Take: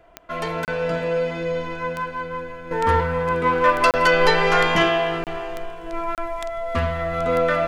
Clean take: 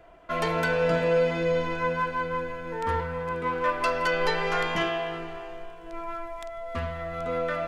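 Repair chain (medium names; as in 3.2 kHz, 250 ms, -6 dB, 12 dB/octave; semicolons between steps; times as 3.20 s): de-click; interpolate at 0.65/3.91/5.24/6.15 s, 28 ms; gain correction -9 dB, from 2.71 s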